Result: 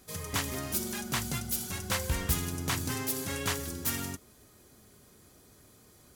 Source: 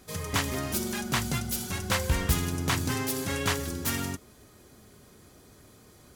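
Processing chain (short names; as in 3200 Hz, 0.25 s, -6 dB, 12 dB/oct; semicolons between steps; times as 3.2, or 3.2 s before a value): high shelf 6500 Hz +6.5 dB; gain -5 dB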